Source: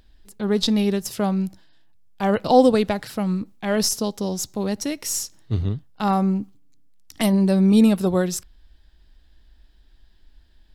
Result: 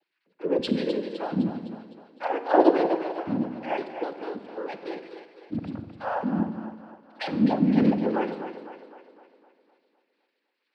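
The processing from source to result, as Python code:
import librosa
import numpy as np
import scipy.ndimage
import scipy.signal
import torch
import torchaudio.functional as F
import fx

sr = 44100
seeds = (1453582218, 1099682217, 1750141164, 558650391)

y = fx.sine_speech(x, sr)
y = fx.harmonic_tremolo(y, sr, hz=2.0, depth_pct=50, crossover_hz=640.0)
y = fx.noise_vocoder(y, sr, seeds[0], bands=8)
y = fx.echo_split(y, sr, split_hz=330.0, low_ms=82, high_ms=255, feedback_pct=52, wet_db=-9.5)
y = fx.rev_schroeder(y, sr, rt60_s=1.2, comb_ms=32, drr_db=11.0)
y = F.gain(torch.from_numpy(y), -3.0).numpy()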